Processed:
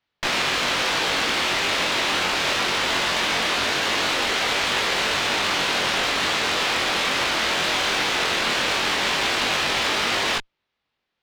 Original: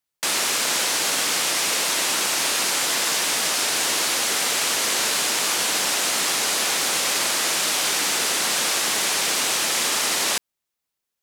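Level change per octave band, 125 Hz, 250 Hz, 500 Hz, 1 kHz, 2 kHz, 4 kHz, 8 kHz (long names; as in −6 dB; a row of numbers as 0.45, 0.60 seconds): +7.5, +4.0, +3.5, +3.5, +3.5, +0.5, −10.5 decibels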